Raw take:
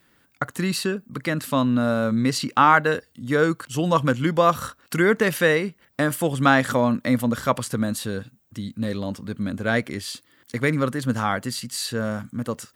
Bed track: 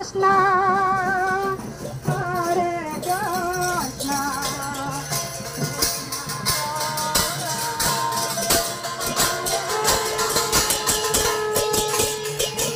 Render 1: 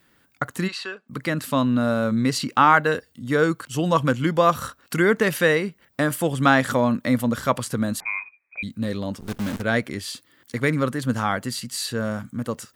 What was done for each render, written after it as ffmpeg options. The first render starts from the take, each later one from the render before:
-filter_complex "[0:a]asplit=3[a][b][c];[a]afade=t=out:st=0.67:d=0.02[d];[b]highpass=720,lowpass=4k,afade=t=in:st=0.67:d=0.02,afade=t=out:st=1.08:d=0.02[e];[c]afade=t=in:st=1.08:d=0.02[f];[d][e][f]amix=inputs=3:normalize=0,asettb=1/sr,asplit=3[g][h][i];[g]atrim=end=8.004[j];[h]atrim=start=8:end=8.63,asetpts=PTS-STARTPTS,afade=t=in:d=0.004:c=qsin,afade=t=out:st=0.626:d=0.004:c=qsin,lowpass=f=2.2k:t=q:w=0.5098,lowpass=f=2.2k:t=q:w=0.6013,lowpass=f=2.2k:t=q:w=0.9,lowpass=f=2.2k:t=q:w=2.563,afreqshift=-2600[k];[i]atrim=start=8.626[l];[j][k]acrossfade=d=0.004:c1=hsin:c2=qsin[m];[m][l]acrossfade=d=0.004:c1=qsin:c2=hsin,asettb=1/sr,asplit=3[n][o][p];[n]atrim=end=9.204[q];[o]atrim=start=9.2:end=9.62,asetpts=PTS-STARTPTS,afade=t=in:d=0.004:c=qsin,afade=t=out:st=0.416:d=0.004:c=qsin,acrusher=bits=6:dc=4:mix=0:aa=0.000001[r];[p]atrim=start=9.616[s];[q][r]acrossfade=d=0.004:c1=hsin:c2=qsin[t];[t][s]acrossfade=d=0.004:c1=qsin:c2=hsin"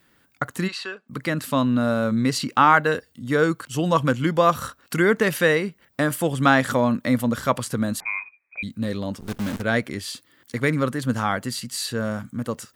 -af anull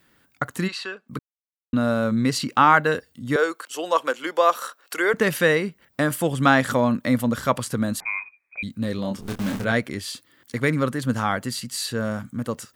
-filter_complex "[0:a]asettb=1/sr,asplit=3[a][b][c];[a]atrim=end=3.364[d];[b]atrim=start=3.36:end=5.14,asetpts=PTS-STARTPTS,afade=t=in:d=0.004:c=qsin,afade=t=out:st=1.776:d=0.004:c=qsin,highpass=f=400:w=0.5412,highpass=f=400:w=1.3066[e];[c]atrim=start=5.136[f];[d][e]acrossfade=d=0.004:c1=hsin:c2=qsin[g];[g][f]acrossfade=d=0.004:c1=qsin:c2=hsin,asettb=1/sr,asplit=3[h][i][j];[h]atrim=end=8.964[k];[i]atrim=start=8.96:end=9.72,asetpts=PTS-STARTPTS,afade=t=in:d=0.004:c=qsin,afade=t=out:st=0.756:d=0.004:c=qsin,asplit=2[l][m];[m]adelay=26,volume=-5.5dB[n];[l][n]amix=inputs=2:normalize=0,atrim=end_sample=33516[o];[j]atrim=start=9.716[p];[k][o]acrossfade=d=0.004:c1=hsin:c2=qsin[q];[q][p]acrossfade=d=0.004:c1=qsin:c2=hsin,asplit=3[r][s][t];[r]atrim=end=1.19,asetpts=PTS-STARTPTS,afade=t=out:st=1.186:d=0.004:c=hsin[u];[s]atrim=start=1.19:end=1.73,asetpts=PTS-STARTPTS,volume=0[v];[t]atrim=start=1.73,asetpts=PTS-STARTPTS,afade=t=in:d=0.004:c=hsin[w];[u][v][w]concat=n=3:v=0:a=1"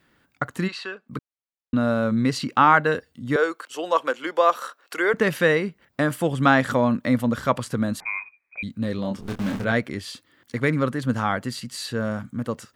-af "highshelf=f=6.1k:g=-10"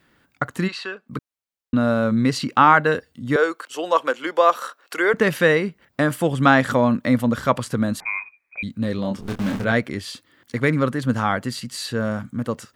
-af "volume=2.5dB,alimiter=limit=-2dB:level=0:latency=1"

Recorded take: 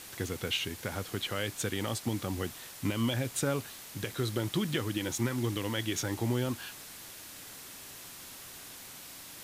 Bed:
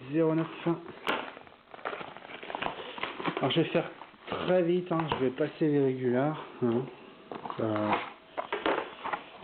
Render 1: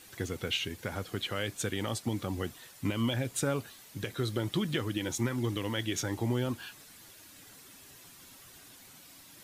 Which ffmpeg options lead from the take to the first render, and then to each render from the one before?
-af "afftdn=nr=9:nf=-48"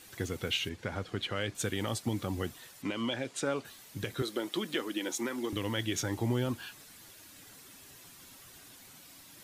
-filter_complex "[0:a]asettb=1/sr,asplit=3[a][b][c];[a]atrim=end=0.694[d];[b]atrim=start=0.69:end=1.55,asetpts=PTS-STARTPTS,afade=t=in:d=0.004:c=qsin,afade=t=out:st=0.856:d=0.004:c=qsin,adynamicsmooth=sensitivity=4.5:basefreq=6.3k[e];[c]atrim=start=1.546[f];[d][e]acrossfade=d=0.004:c1=hsin:c2=qsin[g];[g][f]acrossfade=d=0.004:c1=qsin:c2=hsin,asettb=1/sr,asplit=3[h][i][j];[h]atrim=end=2.824[k];[i]atrim=start=2.82:end=3.65,asetpts=PTS-STARTPTS,afade=t=in:d=0.004:c=qsin,afade=t=out:st=0.826:d=0.004:c=qsin,highpass=250,lowpass=6.6k[l];[j]atrim=start=3.646[m];[k][l]acrossfade=d=0.004:c1=hsin:c2=qsin[n];[n][m]acrossfade=d=0.004:c1=qsin:c2=hsin,asettb=1/sr,asplit=3[o][p][q];[o]atrim=end=4.224[r];[p]atrim=start=4.22:end=5.53,asetpts=PTS-STARTPTS,afade=t=in:d=0.004:c=qsin,afade=t=out:st=1.306:d=0.004:c=qsin,highpass=f=250:w=0.5412,highpass=f=250:w=1.3066[s];[q]atrim=start=5.526[t];[r][s]acrossfade=d=0.004:c1=hsin:c2=qsin[u];[u][t]acrossfade=d=0.004:c1=qsin:c2=hsin"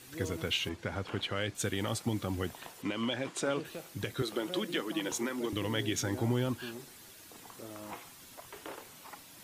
-filter_complex "[1:a]volume=-16.5dB[a];[0:a][a]amix=inputs=2:normalize=0"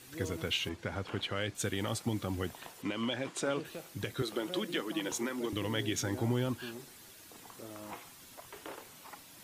-af "volume=-1dB"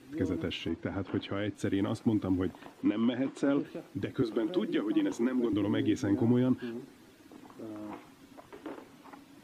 -af "lowpass=f=1.7k:p=1,equalizer=f=280:w=2.2:g=12"

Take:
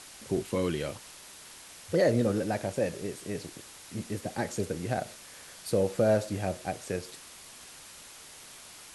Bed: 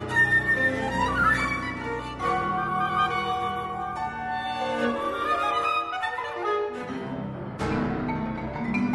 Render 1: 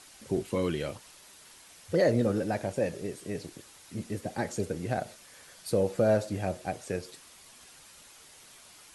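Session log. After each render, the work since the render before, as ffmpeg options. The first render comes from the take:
-af "afftdn=nr=6:nf=-49"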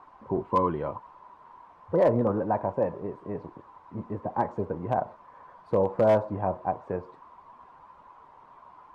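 -af "lowpass=f=1k:t=q:w=11,asoftclip=type=hard:threshold=-14.5dB"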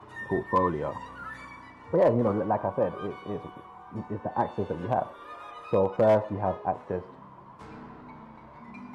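-filter_complex "[1:a]volume=-19dB[a];[0:a][a]amix=inputs=2:normalize=0"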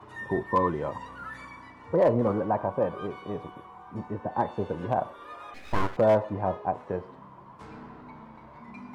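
-filter_complex "[0:a]asettb=1/sr,asplit=3[a][b][c];[a]atrim=end=5.544[d];[b]atrim=start=5.54:end=5.97,asetpts=PTS-STARTPTS,afade=t=in:d=0.004:c=qsin,afade=t=out:st=0.426:d=0.004:c=qsin,aeval=exprs='abs(val(0))':c=same[e];[c]atrim=start=5.966[f];[d][e]acrossfade=d=0.004:c1=hsin:c2=qsin[g];[g][f]acrossfade=d=0.004:c1=qsin:c2=hsin"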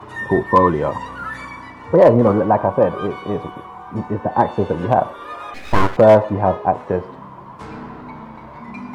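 -af "volume=11.5dB"

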